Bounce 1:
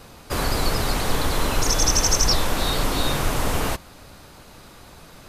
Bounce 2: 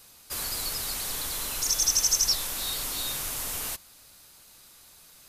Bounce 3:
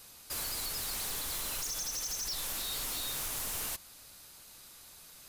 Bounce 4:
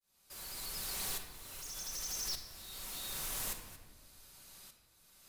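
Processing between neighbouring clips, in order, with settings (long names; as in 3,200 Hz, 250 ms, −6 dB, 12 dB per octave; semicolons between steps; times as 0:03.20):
first-order pre-emphasis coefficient 0.9
in parallel at +0.5 dB: downward compressor, threshold −33 dBFS, peak gain reduction 13.5 dB; on the sum: brickwall limiter −18.5 dBFS, peak gain reduction 9 dB; wave folding −24.5 dBFS; level −6.5 dB
shaped tremolo saw up 0.85 Hz, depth 100%; rectangular room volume 1,300 cubic metres, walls mixed, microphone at 1.1 metres; level −2 dB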